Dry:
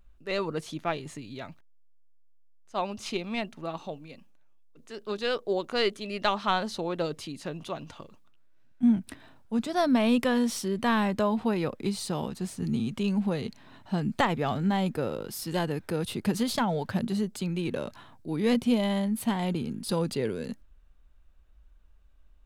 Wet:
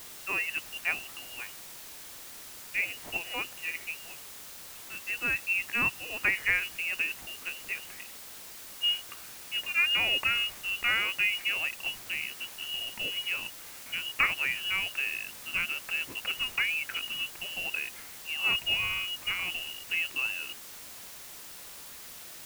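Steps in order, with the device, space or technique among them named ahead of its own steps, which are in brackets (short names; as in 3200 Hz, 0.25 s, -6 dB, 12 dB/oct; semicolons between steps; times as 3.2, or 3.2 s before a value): scrambled radio voice (BPF 330–2800 Hz; inverted band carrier 3100 Hz; white noise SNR 12 dB)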